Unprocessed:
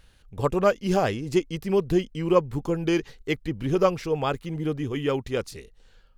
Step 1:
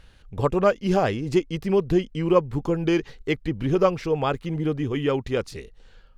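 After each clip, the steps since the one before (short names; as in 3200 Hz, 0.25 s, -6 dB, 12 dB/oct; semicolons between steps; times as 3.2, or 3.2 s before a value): in parallel at -2 dB: compressor, threshold -31 dBFS, peak gain reduction 16.5 dB; on the sum: high shelf 7200 Hz -11.5 dB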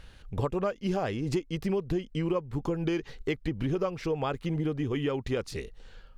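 compressor 6:1, threshold -28 dBFS, peak gain reduction 15 dB; gain +1.5 dB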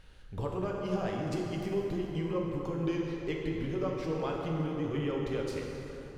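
plate-style reverb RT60 3.7 s, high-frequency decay 0.6×, DRR -1.5 dB; gain -7 dB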